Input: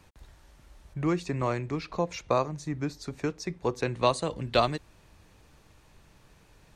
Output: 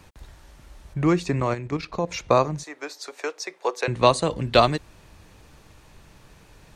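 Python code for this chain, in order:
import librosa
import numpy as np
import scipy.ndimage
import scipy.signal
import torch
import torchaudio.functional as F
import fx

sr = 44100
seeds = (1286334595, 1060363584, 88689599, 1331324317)

y = fx.level_steps(x, sr, step_db=10, at=(1.4, 2.12))
y = fx.highpass(y, sr, hz=470.0, slope=24, at=(2.63, 3.88))
y = y * librosa.db_to_amplitude(7.0)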